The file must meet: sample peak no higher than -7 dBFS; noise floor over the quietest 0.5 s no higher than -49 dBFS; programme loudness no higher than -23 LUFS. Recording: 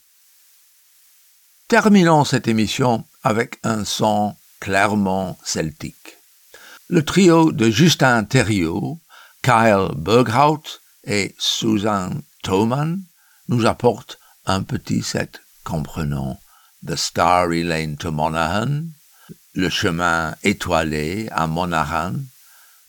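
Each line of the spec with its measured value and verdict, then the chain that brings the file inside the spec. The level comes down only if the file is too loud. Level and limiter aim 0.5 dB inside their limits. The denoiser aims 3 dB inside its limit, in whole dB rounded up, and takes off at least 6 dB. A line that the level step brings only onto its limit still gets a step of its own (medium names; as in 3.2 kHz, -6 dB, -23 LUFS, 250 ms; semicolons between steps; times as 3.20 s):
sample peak -2.0 dBFS: fail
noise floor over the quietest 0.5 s -54 dBFS: pass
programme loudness -18.5 LUFS: fail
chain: trim -5 dB; peak limiter -7.5 dBFS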